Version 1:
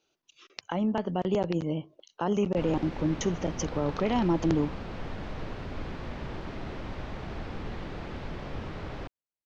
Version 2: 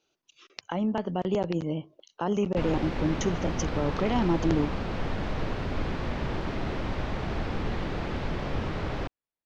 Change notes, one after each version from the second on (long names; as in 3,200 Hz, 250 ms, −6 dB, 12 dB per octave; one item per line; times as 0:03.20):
background +6.5 dB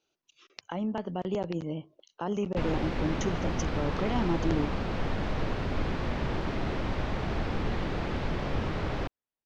speech −4.0 dB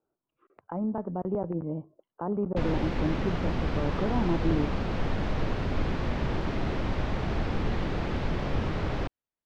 speech: add low-pass filter 1,300 Hz 24 dB per octave
master: add low-shelf EQ 320 Hz +2.5 dB